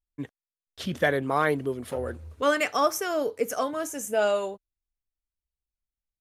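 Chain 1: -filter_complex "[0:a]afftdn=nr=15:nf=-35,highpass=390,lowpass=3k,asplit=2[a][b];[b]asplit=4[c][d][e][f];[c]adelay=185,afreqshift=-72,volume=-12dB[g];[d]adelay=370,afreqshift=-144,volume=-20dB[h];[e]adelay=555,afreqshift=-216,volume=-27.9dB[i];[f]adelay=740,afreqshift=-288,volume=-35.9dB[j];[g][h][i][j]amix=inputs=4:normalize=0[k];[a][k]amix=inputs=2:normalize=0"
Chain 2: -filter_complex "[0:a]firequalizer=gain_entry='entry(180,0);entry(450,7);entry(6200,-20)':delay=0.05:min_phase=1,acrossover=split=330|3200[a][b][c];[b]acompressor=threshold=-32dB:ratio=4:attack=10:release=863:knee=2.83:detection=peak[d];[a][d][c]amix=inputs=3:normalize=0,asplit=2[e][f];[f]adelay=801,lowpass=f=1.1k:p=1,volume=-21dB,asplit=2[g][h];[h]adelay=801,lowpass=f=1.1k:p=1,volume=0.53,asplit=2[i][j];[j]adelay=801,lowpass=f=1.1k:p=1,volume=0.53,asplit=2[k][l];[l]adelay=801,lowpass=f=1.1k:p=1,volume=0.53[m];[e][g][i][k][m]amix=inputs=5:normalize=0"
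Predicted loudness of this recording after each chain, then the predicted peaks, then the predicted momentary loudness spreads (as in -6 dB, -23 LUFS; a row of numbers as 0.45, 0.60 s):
-28.0, -31.5 LUFS; -11.0, -13.5 dBFS; 13, 10 LU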